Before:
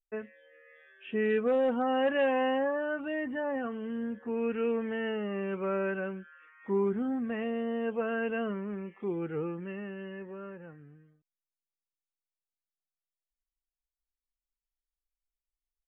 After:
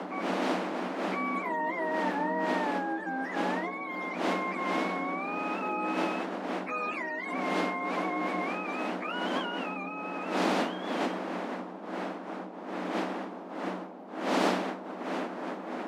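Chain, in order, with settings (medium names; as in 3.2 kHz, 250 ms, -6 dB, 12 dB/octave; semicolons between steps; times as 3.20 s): spectrum inverted on a logarithmic axis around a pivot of 700 Hz; wind noise 470 Hz -34 dBFS; rippled Chebyshev high-pass 180 Hz, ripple 9 dB; peaking EQ 320 Hz +12 dB 0.23 oct; spectrum-flattening compressor 2:1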